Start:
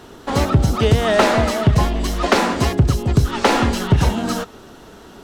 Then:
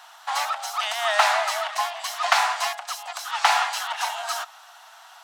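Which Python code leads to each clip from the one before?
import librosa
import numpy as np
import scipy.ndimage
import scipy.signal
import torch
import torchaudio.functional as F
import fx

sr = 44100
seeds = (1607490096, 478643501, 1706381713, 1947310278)

y = scipy.signal.sosfilt(scipy.signal.butter(12, 690.0, 'highpass', fs=sr, output='sos'), x)
y = F.gain(torch.from_numpy(y), -1.0).numpy()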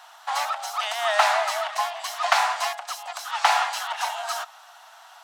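y = fx.low_shelf(x, sr, hz=490.0, db=9.0)
y = F.gain(torch.from_numpy(y), -2.0).numpy()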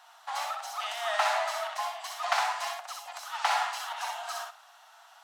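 y = fx.echo_feedback(x, sr, ms=62, feedback_pct=18, wet_db=-4.0)
y = F.gain(torch.from_numpy(y), -8.5).numpy()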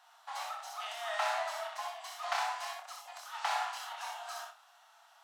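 y = fx.doubler(x, sr, ms=27.0, db=-5.5)
y = F.gain(torch.from_numpy(y), -7.5).numpy()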